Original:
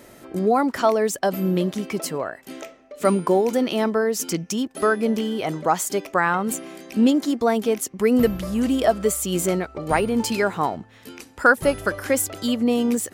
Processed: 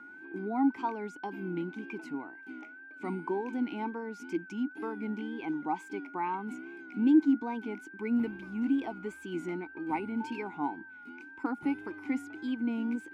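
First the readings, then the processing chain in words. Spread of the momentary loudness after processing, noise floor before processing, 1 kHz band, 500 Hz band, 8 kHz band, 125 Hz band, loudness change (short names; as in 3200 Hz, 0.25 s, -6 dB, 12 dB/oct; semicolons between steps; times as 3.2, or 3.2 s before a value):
12 LU, -50 dBFS, -12.5 dB, -18.5 dB, under -30 dB, -16.0 dB, -11.5 dB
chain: vowel filter u; whine 1500 Hz -47 dBFS; wow and flutter 85 cents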